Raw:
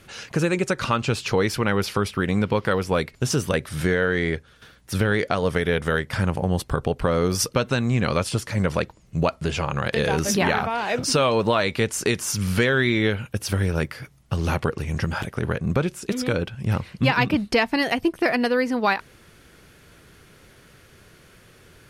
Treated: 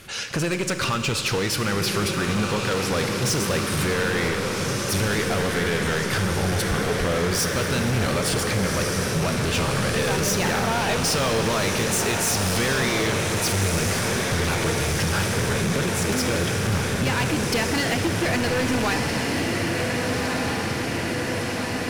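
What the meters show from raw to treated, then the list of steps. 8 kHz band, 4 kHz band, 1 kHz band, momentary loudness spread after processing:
+6.5 dB, +4.5 dB, +0.5 dB, 3 LU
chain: high-shelf EQ 2,100 Hz +6 dB
downward compressor, threshold −21 dBFS, peak gain reduction 8 dB
feedback delay with all-pass diffusion 1,569 ms, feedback 73%, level −5 dB
hard clipping −23.5 dBFS, distortion −9 dB
four-comb reverb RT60 3.3 s, combs from 31 ms, DRR 7 dB
level +3.5 dB

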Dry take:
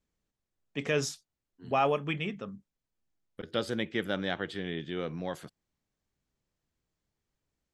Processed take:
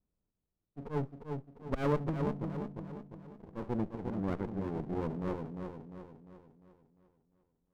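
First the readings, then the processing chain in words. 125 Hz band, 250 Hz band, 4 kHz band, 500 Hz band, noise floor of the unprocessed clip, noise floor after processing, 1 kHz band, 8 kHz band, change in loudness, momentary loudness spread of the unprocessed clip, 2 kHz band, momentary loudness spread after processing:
+2.5 dB, +0.5 dB, below −20 dB, −4.5 dB, below −85 dBFS, below −85 dBFS, −7.0 dB, below −20 dB, −4.5 dB, 16 LU, −13.5 dB, 18 LU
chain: volume swells 116 ms
inverse Chebyshev low-pass filter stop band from 2,700 Hz, stop band 50 dB
delay with a low-pass on its return 350 ms, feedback 47%, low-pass 710 Hz, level −4.5 dB
windowed peak hold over 33 samples

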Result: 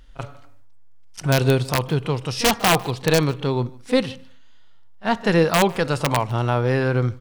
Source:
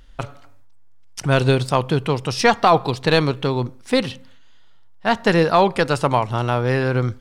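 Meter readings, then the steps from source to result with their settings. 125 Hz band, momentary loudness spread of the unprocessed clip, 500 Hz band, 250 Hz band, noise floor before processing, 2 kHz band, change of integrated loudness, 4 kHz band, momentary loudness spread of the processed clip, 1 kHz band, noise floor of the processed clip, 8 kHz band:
−0.5 dB, 11 LU, −2.5 dB, −1.0 dB, −43 dBFS, −2.0 dB, −1.5 dB, 0.0 dB, 9 LU, −4.5 dB, −41 dBFS, +5.5 dB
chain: echo ahead of the sound 34 ms −20 dB
wrap-around overflow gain 5.5 dB
harmonic and percussive parts rebalanced percussive −5 dB
on a send: single-tap delay 151 ms −24 dB

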